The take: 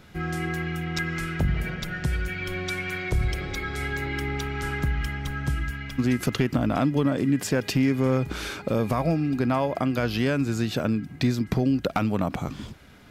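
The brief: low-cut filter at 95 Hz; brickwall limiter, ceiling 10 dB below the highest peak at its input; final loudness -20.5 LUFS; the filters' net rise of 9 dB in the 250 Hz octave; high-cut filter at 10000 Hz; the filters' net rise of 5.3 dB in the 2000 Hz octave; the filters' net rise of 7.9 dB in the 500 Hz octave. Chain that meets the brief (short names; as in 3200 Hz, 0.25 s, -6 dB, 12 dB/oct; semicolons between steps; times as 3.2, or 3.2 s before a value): HPF 95 Hz; LPF 10000 Hz; bell 250 Hz +8.5 dB; bell 500 Hz +7 dB; bell 2000 Hz +6 dB; gain +3 dB; limiter -10 dBFS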